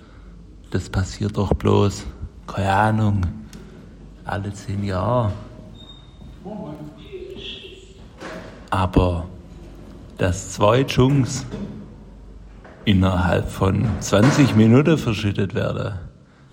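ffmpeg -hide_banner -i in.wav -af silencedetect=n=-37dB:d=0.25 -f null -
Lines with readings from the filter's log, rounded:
silence_start: 16.10
silence_end: 16.52 | silence_duration: 0.42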